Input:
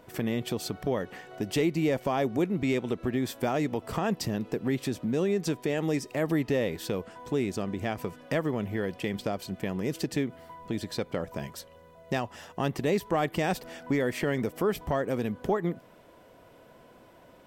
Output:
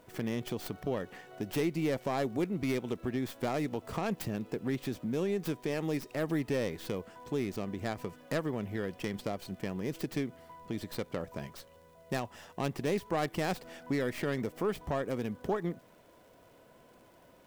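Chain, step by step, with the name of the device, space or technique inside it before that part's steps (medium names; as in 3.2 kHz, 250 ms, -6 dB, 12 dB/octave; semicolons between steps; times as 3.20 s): record under a worn stylus (tracing distortion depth 0.33 ms; crackle; white noise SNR 40 dB); trim -5 dB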